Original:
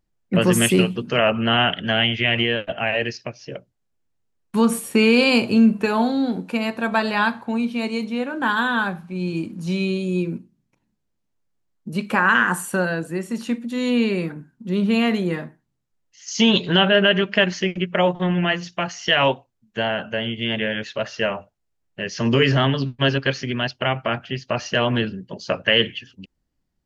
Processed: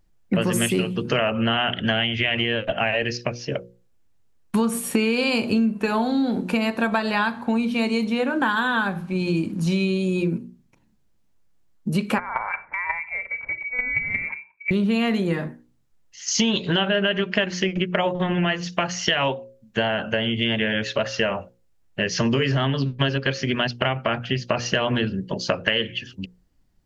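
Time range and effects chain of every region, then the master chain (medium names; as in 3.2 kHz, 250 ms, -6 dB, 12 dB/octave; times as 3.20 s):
12.18–14.71 s: frequency inversion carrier 2.5 kHz + compression 3:1, threshold -22 dBFS + square tremolo 5.6 Hz, depth 65%, duty 10%
whole clip: bass shelf 88 Hz +6 dB; hum notches 60/120/180/240/300/360/420/480/540 Hz; compression 6:1, threshold -26 dBFS; trim +7 dB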